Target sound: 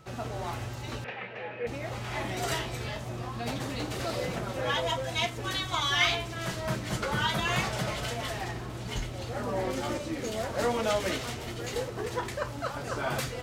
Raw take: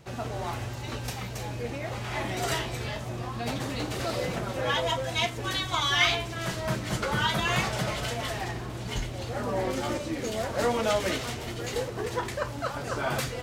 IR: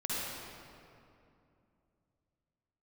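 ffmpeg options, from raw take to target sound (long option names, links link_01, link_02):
-filter_complex "[0:a]aeval=exprs='val(0)+0.00158*sin(2*PI*1300*n/s)':channel_layout=same,asettb=1/sr,asplit=3[link_01][link_02][link_03];[link_01]atrim=end=1.044[link_04];[link_02]atrim=start=1.04:end=1.67,asetpts=PTS-STARTPTS,afade=type=in:duration=0.004:curve=qsin,afade=type=out:start_time=0.626:duration=0.004:curve=qsin,highpass=260,equalizer=frequency=290:width_type=q:width=4:gain=-8,equalizer=frequency=500:width_type=q:width=4:gain=6,equalizer=frequency=1100:width_type=q:width=4:gain=-3,equalizer=frequency=1800:width_type=q:width=4:gain=8,equalizer=frequency=2600:width_type=q:width=4:gain=6,lowpass=frequency=2800:width=0.5412,lowpass=frequency=2800:width=1.3066[link_05];[link_03]atrim=start=1.666[link_06];[link_04][link_05]acrossfade=duration=0.004:curve1=hsin:curve2=qsin[link_07];[link_07][link_06]acrossfade=duration=0.004:curve1=qsin:curve2=hsin,volume=-2dB"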